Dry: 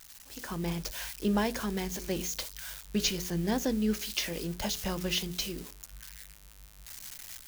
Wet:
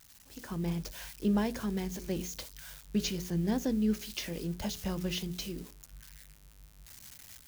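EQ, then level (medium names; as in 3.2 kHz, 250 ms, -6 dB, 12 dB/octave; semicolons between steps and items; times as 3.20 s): high-pass 82 Hz 6 dB/octave; bass shelf 320 Hz +11 dB; -6.5 dB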